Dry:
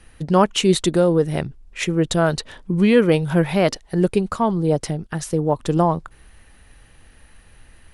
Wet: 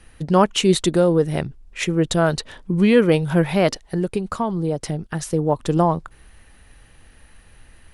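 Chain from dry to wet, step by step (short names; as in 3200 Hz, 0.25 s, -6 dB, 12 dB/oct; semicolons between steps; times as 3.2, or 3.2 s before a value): 3.84–4.93 compressor 4:1, threshold -19 dBFS, peak gain reduction 6.5 dB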